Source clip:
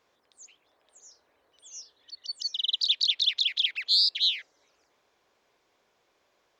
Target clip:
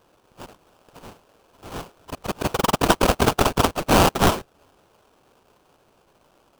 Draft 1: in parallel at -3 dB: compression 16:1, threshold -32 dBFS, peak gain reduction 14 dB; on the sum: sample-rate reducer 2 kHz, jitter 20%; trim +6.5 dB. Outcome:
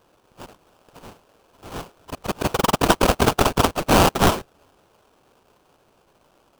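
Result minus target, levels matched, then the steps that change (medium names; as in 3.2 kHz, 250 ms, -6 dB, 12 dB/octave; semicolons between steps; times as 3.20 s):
compression: peak gain reduction -7 dB
change: compression 16:1, threshold -39.5 dBFS, peak gain reduction 21 dB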